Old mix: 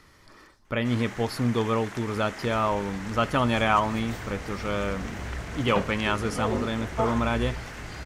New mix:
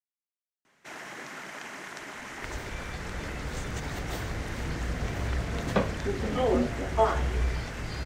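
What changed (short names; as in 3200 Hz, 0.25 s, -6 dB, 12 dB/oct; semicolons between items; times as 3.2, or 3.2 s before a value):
speech: muted; second sound +4.5 dB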